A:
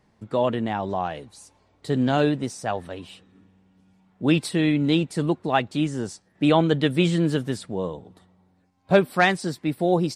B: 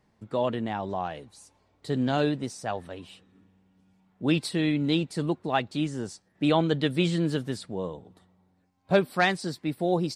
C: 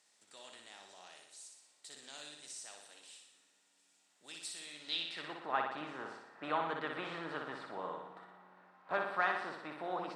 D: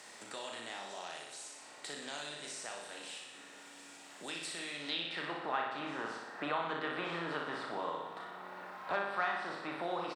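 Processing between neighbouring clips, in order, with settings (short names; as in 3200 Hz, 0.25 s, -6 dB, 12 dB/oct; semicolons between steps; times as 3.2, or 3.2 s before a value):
dynamic EQ 4400 Hz, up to +5 dB, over -47 dBFS, Q 2.7; gain -4.5 dB
per-bin compression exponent 0.6; band-pass sweep 7500 Hz -> 1200 Hz, 4.65–5.49; flutter echo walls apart 10.3 m, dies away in 0.77 s; gain -5 dB
doubler 35 ms -4.5 dB; three-band squash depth 70%; gain +2 dB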